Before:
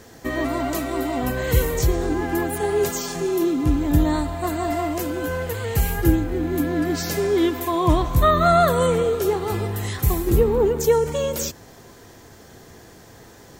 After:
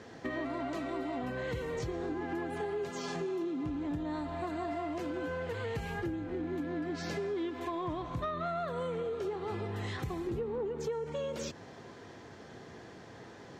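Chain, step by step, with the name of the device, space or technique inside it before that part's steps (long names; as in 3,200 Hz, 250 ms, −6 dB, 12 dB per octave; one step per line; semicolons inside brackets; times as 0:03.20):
AM radio (band-pass filter 110–3,800 Hz; downward compressor 6 to 1, threshold −30 dBFS, peak gain reduction 16.5 dB; soft clipping −22.5 dBFS, distortion −25 dB)
level −3 dB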